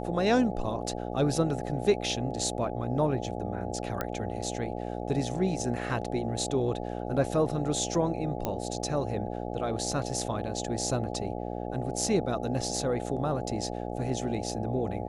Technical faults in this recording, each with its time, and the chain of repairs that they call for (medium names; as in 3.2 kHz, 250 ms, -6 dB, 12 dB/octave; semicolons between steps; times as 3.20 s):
buzz 60 Hz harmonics 14 -35 dBFS
4.01 s: pop -16 dBFS
8.45 s: pop -15 dBFS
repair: de-click; de-hum 60 Hz, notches 14